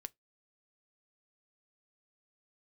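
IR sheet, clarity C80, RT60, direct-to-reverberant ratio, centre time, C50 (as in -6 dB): 45.5 dB, 0.15 s, 12.5 dB, 1 ms, 33.0 dB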